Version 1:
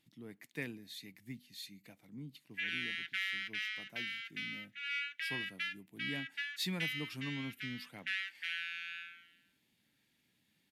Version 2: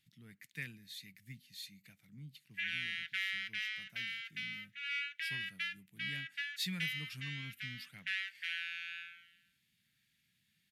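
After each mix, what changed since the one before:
master: add band shelf 520 Hz -15 dB 2.4 oct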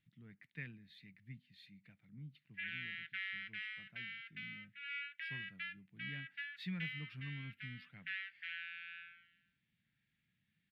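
master: add air absorption 470 m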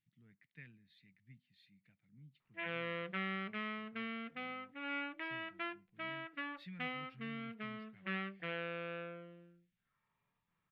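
speech -8.0 dB; background: remove steep high-pass 1500 Hz 96 dB/oct

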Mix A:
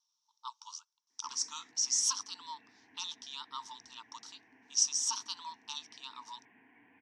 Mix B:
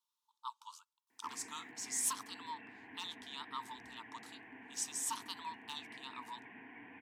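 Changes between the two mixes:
speech: remove synth low-pass 5700 Hz, resonance Q 9.3; background +9.5 dB

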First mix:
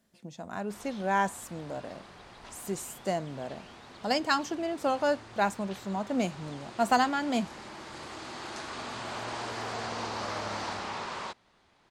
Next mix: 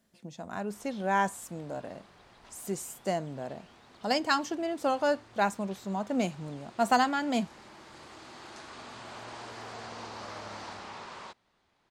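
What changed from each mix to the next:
background -7.0 dB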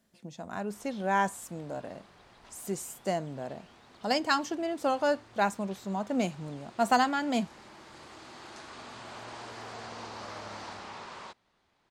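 none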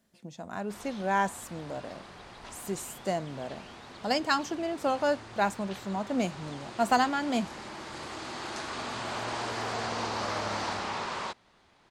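background +9.5 dB

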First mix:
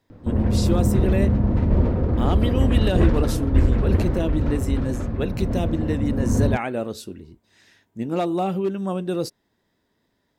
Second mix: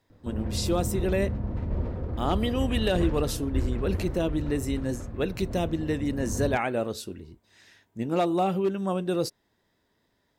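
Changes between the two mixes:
background -10.0 dB; master: add bell 230 Hz -3.5 dB 1.4 oct

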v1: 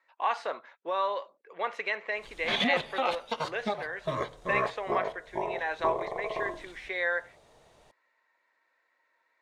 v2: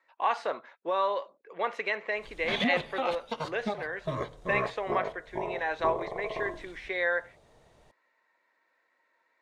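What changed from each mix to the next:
background -4.0 dB; master: add low shelf 390 Hz +7.5 dB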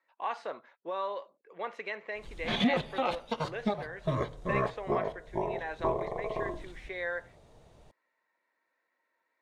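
speech -7.5 dB; master: add low shelf 270 Hz +6 dB

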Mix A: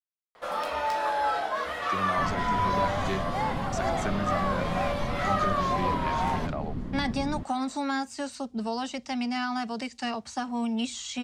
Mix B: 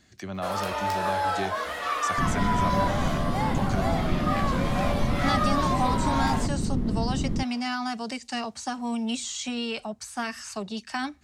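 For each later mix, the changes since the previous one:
speech: entry -1.70 s; second sound +7.0 dB; master: add high shelf 6400 Hz +9.5 dB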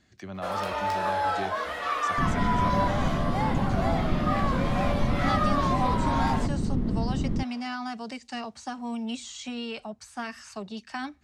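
speech -3.5 dB; master: add high shelf 6400 Hz -9.5 dB

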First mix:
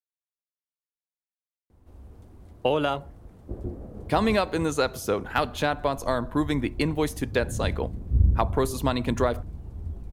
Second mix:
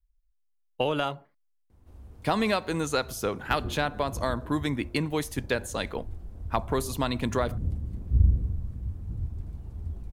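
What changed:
speech: entry -1.85 s; master: add bell 450 Hz -4 dB 2.7 oct

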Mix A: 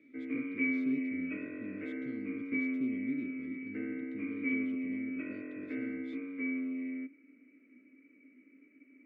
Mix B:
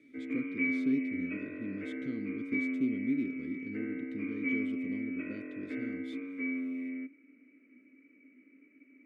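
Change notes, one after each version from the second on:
speech +5.5 dB; master: remove air absorption 100 m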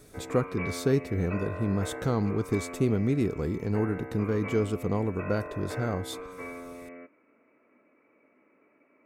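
background -12.0 dB; master: remove vowel filter i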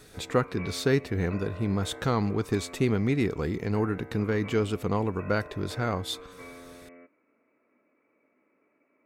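speech: add graphic EQ 1000/2000/4000 Hz +4/+8/+6 dB; background -5.5 dB

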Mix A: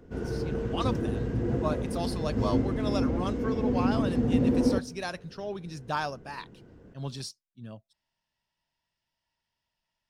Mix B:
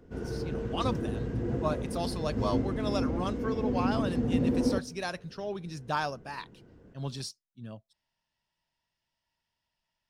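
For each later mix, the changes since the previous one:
background -3.0 dB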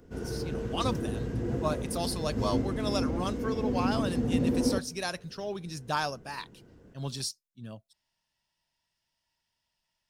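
master: add high shelf 5400 Hz +11 dB

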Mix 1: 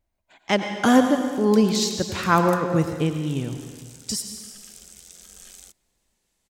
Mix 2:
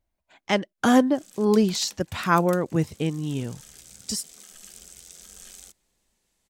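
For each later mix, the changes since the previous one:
reverb: off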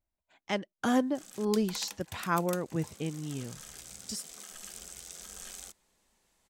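speech -9.0 dB; background: add bell 980 Hz +6 dB 1.8 oct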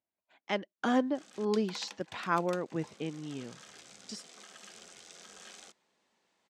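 master: add BPF 210–4600 Hz

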